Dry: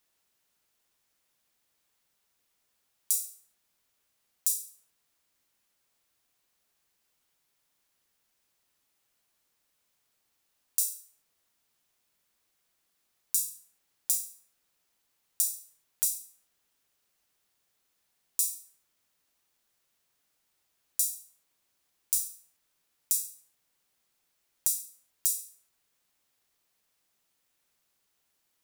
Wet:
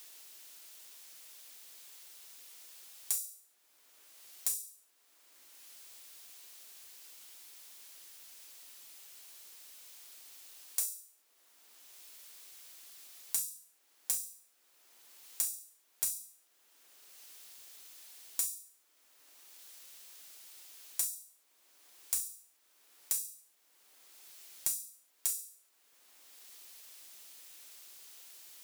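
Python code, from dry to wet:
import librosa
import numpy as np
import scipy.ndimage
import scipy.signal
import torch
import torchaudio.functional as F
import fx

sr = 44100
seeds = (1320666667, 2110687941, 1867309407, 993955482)

y = scipy.signal.sosfilt(scipy.signal.butter(4, 280.0, 'highpass', fs=sr, output='sos'), x)
y = np.clip(y, -10.0 ** (-20.0 / 20.0), 10.0 ** (-20.0 / 20.0))
y = fx.band_squash(y, sr, depth_pct=70)
y = y * librosa.db_to_amplitude(4.0)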